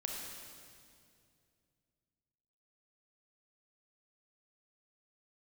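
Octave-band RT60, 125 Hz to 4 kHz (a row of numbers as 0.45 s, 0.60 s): 3.4 s, 2.9 s, 2.6 s, 2.1 s, 2.1 s, 2.1 s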